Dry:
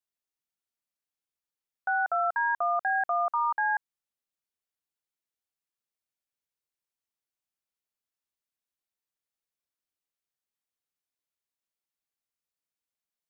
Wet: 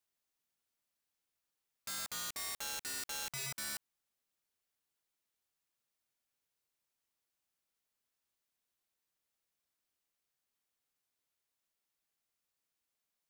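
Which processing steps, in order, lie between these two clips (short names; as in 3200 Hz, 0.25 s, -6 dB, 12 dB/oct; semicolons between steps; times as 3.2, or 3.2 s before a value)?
wrapped overs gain 30.5 dB; limiter -40 dBFS, peak gain reduction 9.5 dB; gain +4 dB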